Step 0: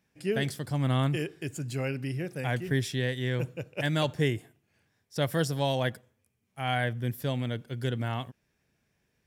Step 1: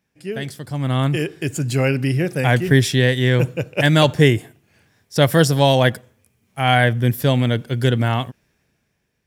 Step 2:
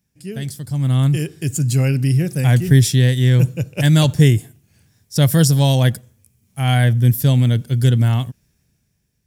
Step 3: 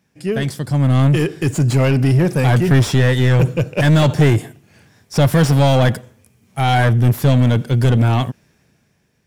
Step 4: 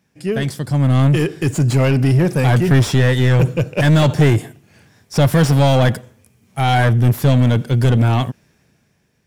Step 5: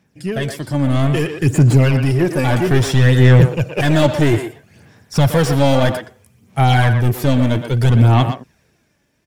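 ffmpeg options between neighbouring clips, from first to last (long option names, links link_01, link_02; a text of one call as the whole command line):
ffmpeg -i in.wav -af "dynaudnorm=framelen=220:gausssize=11:maxgain=15dB,volume=1dB" out.wav
ffmpeg -i in.wav -af "bass=frequency=250:gain=14,treble=frequency=4000:gain=14,volume=-7.5dB" out.wav
ffmpeg -i in.wav -filter_complex "[0:a]asplit=2[link_01][link_02];[link_02]highpass=frequency=720:poles=1,volume=28dB,asoftclip=type=tanh:threshold=-1dB[link_03];[link_01][link_03]amix=inputs=2:normalize=0,lowpass=frequency=1000:poles=1,volume=-6dB,volume=-2.5dB" out.wav
ffmpeg -i in.wav -af anull out.wav
ffmpeg -i in.wav -filter_complex "[0:a]aphaser=in_gain=1:out_gain=1:delay=3.5:decay=0.48:speed=0.61:type=sinusoidal,asplit=2[link_01][link_02];[link_02]adelay=120,highpass=300,lowpass=3400,asoftclip=type=hard:threshold=-10dB,volume=-7dB[link_03];[link_01][link_03]amix=inputs=2:normalize=0,volume=-1dB" out.wav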